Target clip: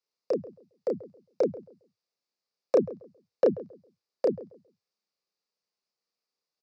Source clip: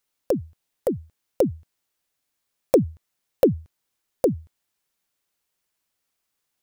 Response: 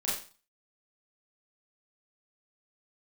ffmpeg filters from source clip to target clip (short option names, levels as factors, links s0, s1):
-filter_complex "[0:a]acrossover=split=210|950|2000[s0][s1][s2][s3];[s2]acrusher=bits=4:mix=0:aa=0.5[s4];[s0][s1][s4][s3]amix=inputs=4:normalize=0,highpass=f=140:w=0.5412,highpass=f=140:w=1.3066,equalizer=f=140:t=q:w=4:g=-8,equalizer=f=290:t=q:w=4:g=-7,equalizer=f=470:t=q:w=4:g=5,equalizer=f=1200:t=q:w=4:g=8,equalizer=f=3200:t=q:w=4:g=-10,equalizer=f=4800:t=q:w=4:g=7,lowpass=f=5600:w=0.5412,lowpass=f=5600:w=1.3066,asplit=2[s5][s6];[s6]adelay=31,volume=0.794[s7];[s5][s7]amix=inputs=2:normalize=0,asplit=2[s8][s9];[s9]adelay=135,lowpass=f=870:p=1,volume=0.15,asplit=2[s10][s11];[s11]adelay=135,lowpass=f=870:p=1,volume=0.27,asplit=2[s12][s13];[s13]adelay=135,lowpass=f=870:p=1,volume=0.27[s14];[s8][s10][s12][s14]amix=inputs=4:normalize=0,volume=0.398"